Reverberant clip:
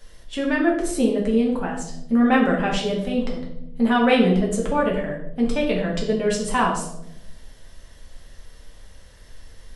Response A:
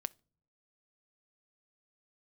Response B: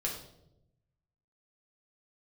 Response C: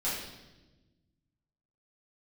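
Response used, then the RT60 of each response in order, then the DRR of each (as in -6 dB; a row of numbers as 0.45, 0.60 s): B; not exponential, 0.85 s, 1.1 s; 16.0, -2.5, -10.5 dB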